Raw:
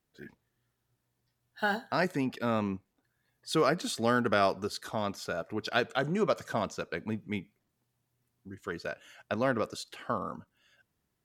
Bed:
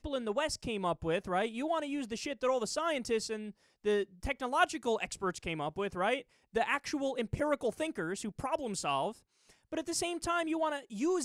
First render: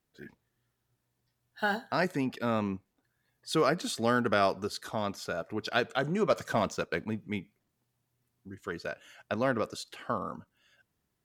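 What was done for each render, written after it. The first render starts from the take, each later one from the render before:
0:06.30–0:07.06: leveller curve on the samples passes 1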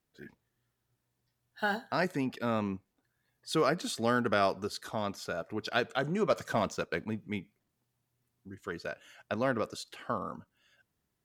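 level −1.5 dB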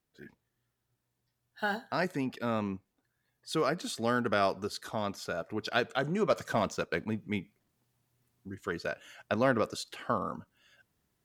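speech leveller within 5 dB 2 s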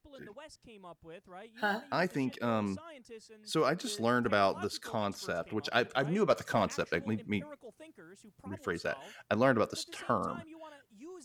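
mix in bed −17.5 dB

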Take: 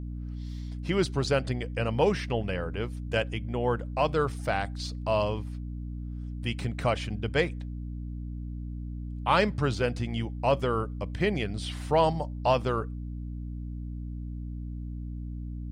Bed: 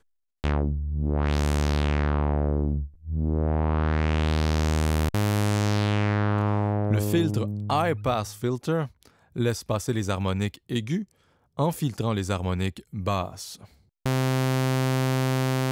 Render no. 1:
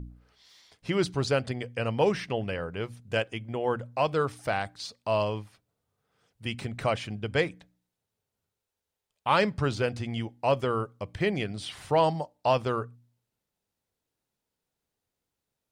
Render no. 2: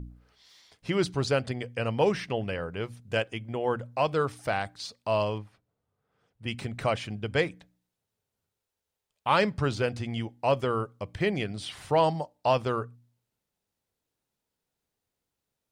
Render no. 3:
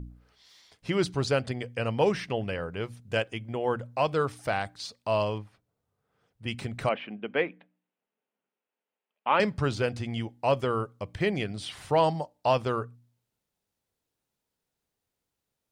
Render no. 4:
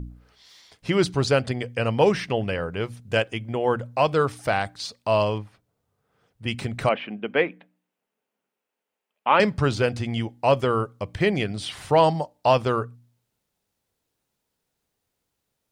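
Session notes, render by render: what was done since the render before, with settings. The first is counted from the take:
hum removal 60 Hz, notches 5
0:05.38–0:06.48: high-shelf EQ 3,200 Hz −12 dB
0:06.89–0:09.40: elliptic band-pass filter 210–2,800 Hz, stop band 50 dB
level +5.5 dB

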